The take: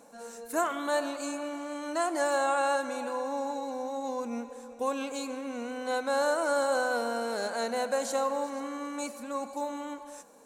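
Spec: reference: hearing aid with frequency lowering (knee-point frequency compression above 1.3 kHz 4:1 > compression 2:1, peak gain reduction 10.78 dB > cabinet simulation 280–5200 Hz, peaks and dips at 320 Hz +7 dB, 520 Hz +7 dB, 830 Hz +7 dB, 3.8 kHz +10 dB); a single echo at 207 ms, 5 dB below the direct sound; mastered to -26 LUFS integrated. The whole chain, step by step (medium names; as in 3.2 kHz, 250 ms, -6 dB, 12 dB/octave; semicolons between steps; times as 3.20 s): delay 207 ms -5 dB; knee-point frequency compression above 1.3 kHz 4:1; compression 2:1, threshold -41 dBFS; cabinet simulation 280–5200 Hz, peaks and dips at 320 Hz +7 dB, 520 Hz +7 dB, 830 Hz +7 dB, 3.8 kHz +10 dB; trim +8 dB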